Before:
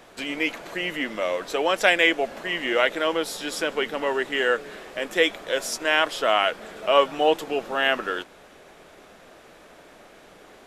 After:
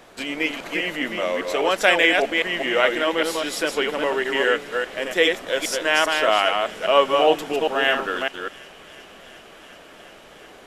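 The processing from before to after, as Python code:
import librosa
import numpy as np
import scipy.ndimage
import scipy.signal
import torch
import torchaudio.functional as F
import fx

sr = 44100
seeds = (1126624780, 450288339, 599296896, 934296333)

y = fx.reverse_delay(x, sr, ms=202, wet_db=-4.0)
y = fx.echo_wet_highpass(y, sr, ms=364, feedback_pct=85, hz=2100.0, wet_db=-21.5)
y = F.gain(torch.from_numpy(y), 1.5).numpy()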